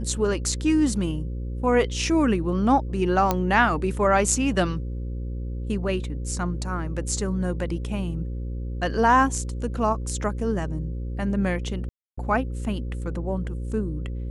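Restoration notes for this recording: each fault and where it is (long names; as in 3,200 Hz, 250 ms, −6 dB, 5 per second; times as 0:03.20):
mains buzz 60 Hz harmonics 9 −30 dBFS
0:03.31: click −7 dBFS
0:11.89–0:12.18: drop-out 285 ms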